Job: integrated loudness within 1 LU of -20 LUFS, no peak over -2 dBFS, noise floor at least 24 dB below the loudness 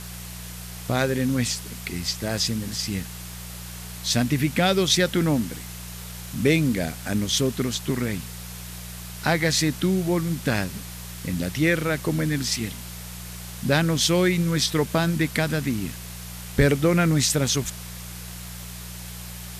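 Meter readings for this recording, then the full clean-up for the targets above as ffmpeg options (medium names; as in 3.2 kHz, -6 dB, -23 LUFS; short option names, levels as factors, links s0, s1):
hum 60 Hz; highest harmonic 180 Hz; hum level -36 dBFS; noise floor -37 dBFS; noise floor target -48 dBFS; loudness -23.5 LUFS; peak level -6.5 dBFS; loudness target -20.0 LUFS
-> -af "bandreject=f=60:t=h:w=4,bandreject=f=120:t=h:w=4,bandreject=f=180:t=h:w=4"
-af "afftdn=nr=11:nf=-37"
-af "volume=1.5"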